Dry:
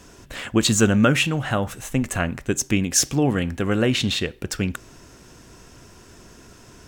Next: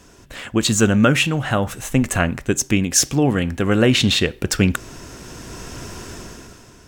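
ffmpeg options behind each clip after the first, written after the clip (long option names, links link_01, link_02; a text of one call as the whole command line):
ffmpeg -i in.wav -af "dynaudnorm=framelen=110:gausssize=13:maxgain=15dB,volume=-1dB" out.wav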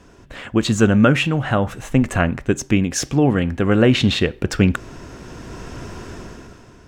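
ffmpeg -i in.wav -af "lowpass=frequency=2200:poles=1,volume=1.5dB" out.wav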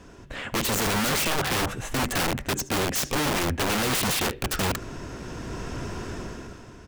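ffmpeg -i in.wav -af "asoftclip=type=tanh:threshold=-18dB,aecho=1:1:73:0.1,aeval=exprs='(mod(11.2*val(0)+1,2)-1)/11.2':channel_layout=same" out.wav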